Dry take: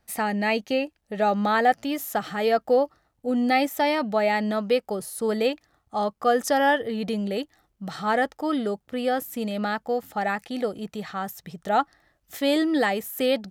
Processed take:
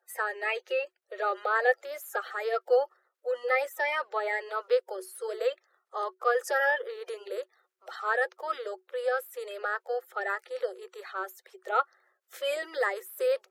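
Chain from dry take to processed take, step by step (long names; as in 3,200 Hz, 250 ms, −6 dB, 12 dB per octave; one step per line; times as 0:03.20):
spectral magnitudes quantised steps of 30 dB
Chebyshev high-pass with heavy ripple 360 Hz, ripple 9 dB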